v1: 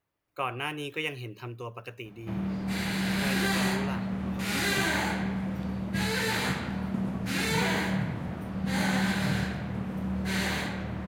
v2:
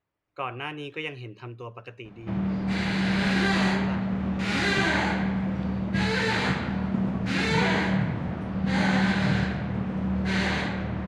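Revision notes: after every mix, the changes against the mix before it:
background +4.5 dB
master: add high-frequency loss of the air 110 metres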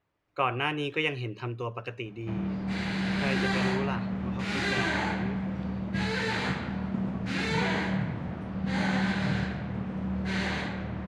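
speech +5.0 dB
background −4.5 dB

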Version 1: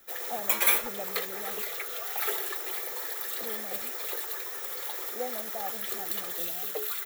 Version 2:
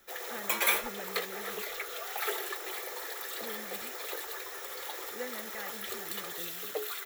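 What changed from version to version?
speech: remove low-pass with resonance 750 Hz, resonance Q 7.2
master: add high-shelf EQ 10,000 Hz −9 dB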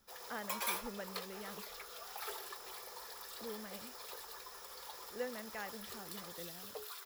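background −11.5 dB
master: add thirty-one-band graphic EQ 315 Hz −8 dB, 1,000 Hz +10 dB, 2,000 Hz −6 dB, 5,000 Hz +11 dB, 10,000 Hz +5 dB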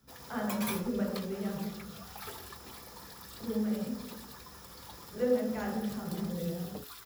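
background: remove Butterworth high-pass 370 Hz 72 dB per octave
reverb: on

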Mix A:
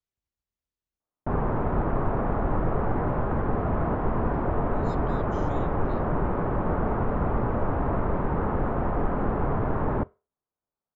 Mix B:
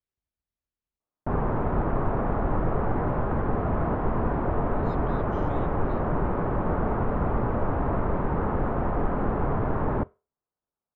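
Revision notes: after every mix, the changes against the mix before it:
speech: add low-pass filter 3,600 Hz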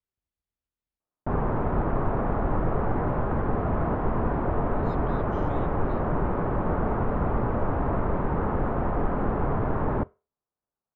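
nothing changed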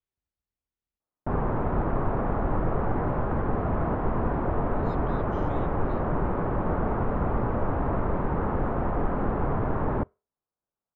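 background: send −7.0 dB

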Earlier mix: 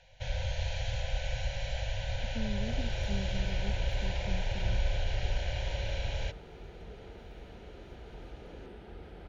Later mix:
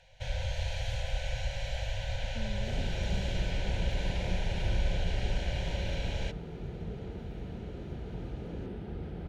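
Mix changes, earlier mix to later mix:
speech −5.0 dB
first sound: remove linear-phase brick-wall low-pass 7,300 Hz
second sound: add parametric band 140 Hz +14.5 dB 2.5 octaves

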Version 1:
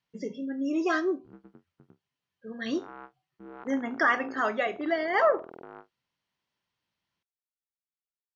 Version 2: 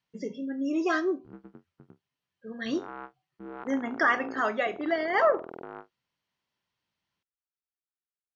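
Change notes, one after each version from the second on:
background +4.0 dB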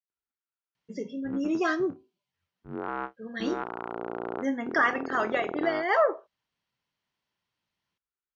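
speech: entry +0.75 s
background +8.0 dB

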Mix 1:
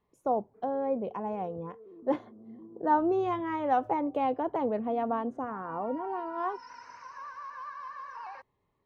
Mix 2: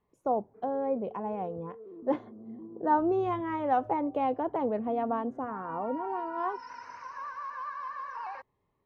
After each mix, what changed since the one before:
background +4.0 dB
master: add high-shelf EQ 4,500 Hz −8 dB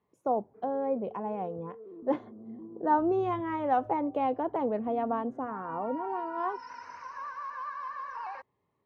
speech: add high-pass filter 94 Hz

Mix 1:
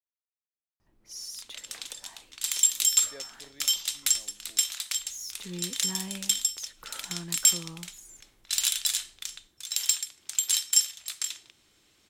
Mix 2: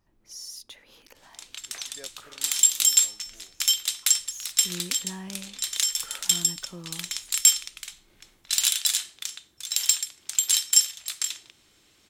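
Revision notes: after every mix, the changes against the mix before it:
speech: entry −1.15 s
first sound: entry −0.80 s
second sound +3.5 dB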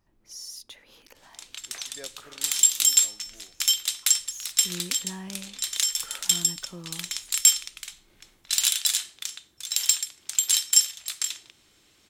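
reverb: on, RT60 1.9 s

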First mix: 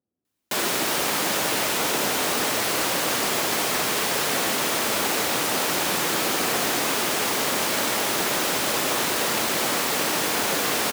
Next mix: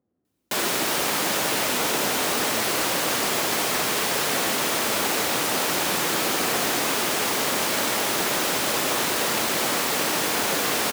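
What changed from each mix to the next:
speech +10.0 dB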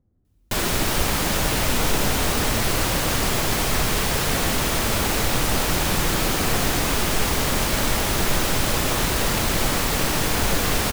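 master: remove high-pass filter 280 Hz 12 dB per octave

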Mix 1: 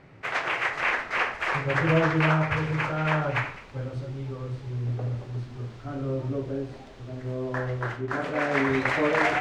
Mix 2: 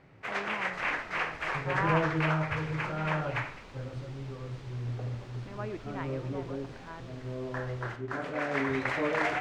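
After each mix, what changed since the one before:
speech: unmuted
first sound −6.0 dB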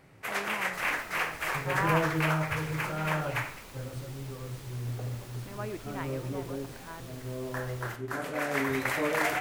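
master: remove high-frequency loss of the air 140 metres

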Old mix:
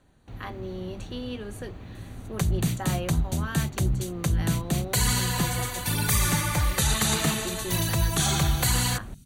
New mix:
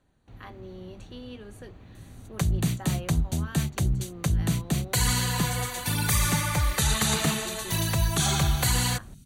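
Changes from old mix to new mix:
speech −7.0 dB
master: add high-shelf EQ 11,000 Hz −3 dB

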